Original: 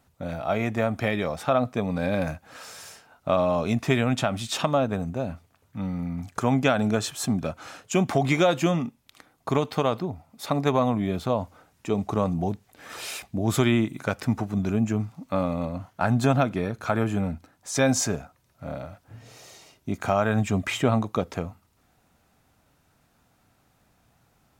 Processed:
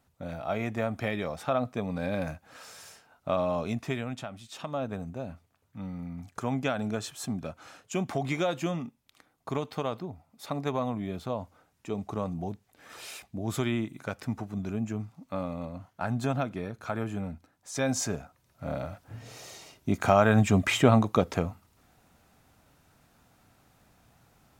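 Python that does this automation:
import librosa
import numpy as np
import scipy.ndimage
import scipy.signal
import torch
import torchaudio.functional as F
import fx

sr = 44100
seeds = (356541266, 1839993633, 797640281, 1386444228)

y = fx.gain(x, sr, db=fx.line((3.59, -5.5), (4.48, -17.0), (4.86, -8.0), (17.74, -8.0), (18.87, 2.0)))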